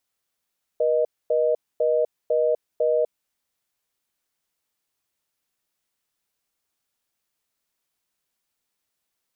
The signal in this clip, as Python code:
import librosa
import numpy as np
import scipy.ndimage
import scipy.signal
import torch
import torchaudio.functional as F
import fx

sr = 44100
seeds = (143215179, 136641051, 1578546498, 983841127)

y = fx.call_progress(sr, length_s=2.48, kind='reorder tone', level_db=-20.5)